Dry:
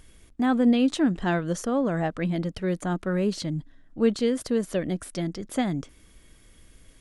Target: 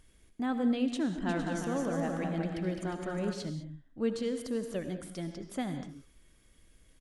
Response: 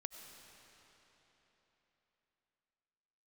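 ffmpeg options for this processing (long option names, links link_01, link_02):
-filter_complex "[0:a]asplit=3[link_01][link_02][link_03];[link_01]afade=type=out:start_time=1.26:duration=0.02[link_04];[link_02]aecho=1:1:210|357|459.9|531.9|582.4:0.631|0.398|0.251|0.158|0.1,afade=type=in:start_time=1.26:duration=0.02,afade=type=out:start_time=3.32:duration=0.02[link_05];[link_03]afade=type=in:start_time=3.32:duration=0.02[link_06];[link_04][link_05][link_06]amix=inputs=3:normalize=0[link_07];[1:a]atrim=start_sample=2205,afade=type=out:start_time=0.33:duration=0.01,atrim=end_sample=14994,asetrate=57330,aresample=44100[link_08];[link_07][link_08]afir=irnorm=-1:irlink=0,volume=-2.5dB"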